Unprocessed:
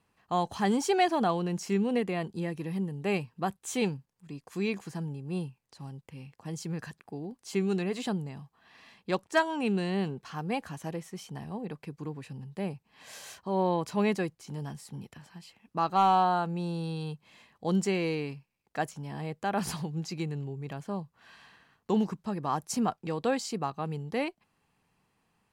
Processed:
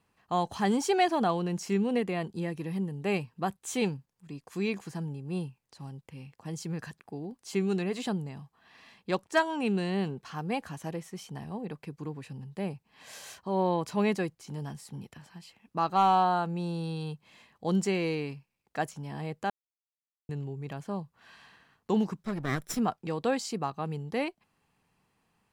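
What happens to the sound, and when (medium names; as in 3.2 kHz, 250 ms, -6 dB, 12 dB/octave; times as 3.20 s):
19.50–20.29 s: mute
22.23–22.79 s: comb filter that takes the minimum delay 0.55 ms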